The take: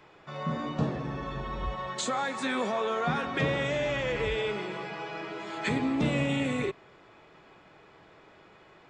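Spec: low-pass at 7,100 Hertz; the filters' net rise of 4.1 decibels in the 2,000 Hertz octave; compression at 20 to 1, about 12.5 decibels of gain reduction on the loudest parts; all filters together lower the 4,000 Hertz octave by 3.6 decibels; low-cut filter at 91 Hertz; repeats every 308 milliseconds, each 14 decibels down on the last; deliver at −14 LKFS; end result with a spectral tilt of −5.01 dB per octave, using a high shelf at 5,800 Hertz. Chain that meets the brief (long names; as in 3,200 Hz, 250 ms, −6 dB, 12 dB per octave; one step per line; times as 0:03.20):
high-pass filter 91 Hz
low-pass filter 7,100 Hz
parametric band 2,000 Hz +6.5 dB
parametric band 4,000 Hz −8.5 dB
high-shelf EQ 5,800 Hz +4 dB
downward compressor 20 to 1, threshold −35 dBFS
repeating echo 308 ms, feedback 20%, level −14 dB
level +24.5 dB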